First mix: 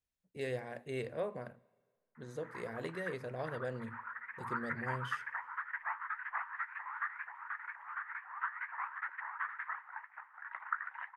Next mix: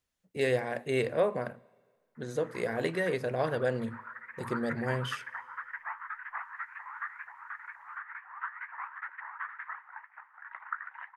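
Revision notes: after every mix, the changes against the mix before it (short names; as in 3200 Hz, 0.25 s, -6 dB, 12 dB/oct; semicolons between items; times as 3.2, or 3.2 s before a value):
speech +11.0 dB; master: add low shelf 130 Hz -6.5 dB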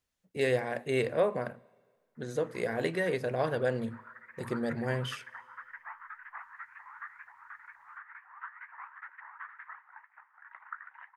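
background -6.0 dB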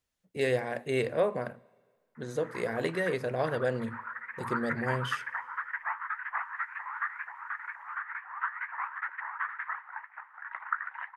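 background +11.0 dB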